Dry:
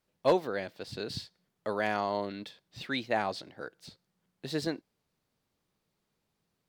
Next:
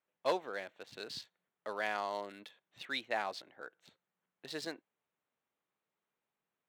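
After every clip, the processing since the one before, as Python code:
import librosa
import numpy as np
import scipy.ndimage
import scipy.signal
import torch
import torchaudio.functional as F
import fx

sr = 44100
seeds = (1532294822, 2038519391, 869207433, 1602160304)

y = fx.wiener(x, sr, points=9)
y = fx.highpass(y, sr, hz=990.0, slope=6)
y = y * 10.0 ** (-1.5 / 20.0)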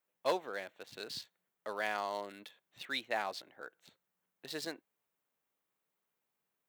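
y = fx.high_shelf(x, sr, hz=11000.0, db=12.0)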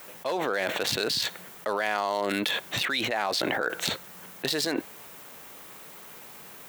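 y = fx.env_flatten(x, sr, amount_pct=100)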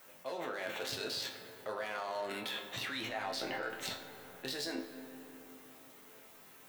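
y = fx.resonator_bank(x, sr, root=41, chord='major', decay_s=0.28)
y = fx.rev_freeverb(y, sr, rt60_s=4.5, hf_ratio=0.35, predelay_ms=25, drr_db=8.5)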